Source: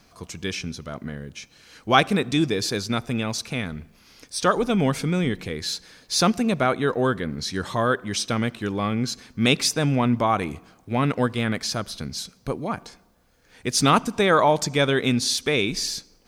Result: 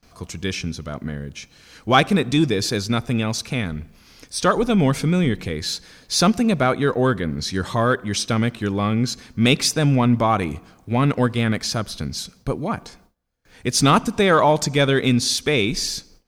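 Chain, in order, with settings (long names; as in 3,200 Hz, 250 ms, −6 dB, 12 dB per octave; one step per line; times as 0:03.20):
noise gate with hold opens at −46 dBFS
low-shelf EQ 150 Hz +6 dB
in parallel at −10 dB: gain into a clipping stage and back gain 15 dB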